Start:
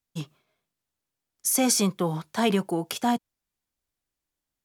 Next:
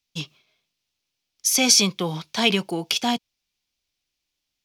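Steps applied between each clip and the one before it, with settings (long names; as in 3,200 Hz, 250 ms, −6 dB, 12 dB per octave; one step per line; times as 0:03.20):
flat-topped bell 3,700 Hz +12 dB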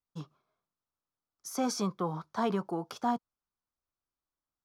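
high shelf with overshoot 1,800 Hz −13 dB, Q 3
level −8 dB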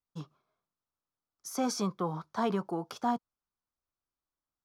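no processing that can be heard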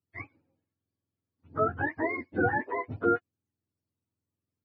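frequency axis turned over on the octave scale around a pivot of 580 Hz
level +5.5 dB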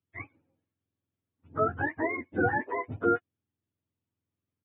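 downsampling to 8,000 Hz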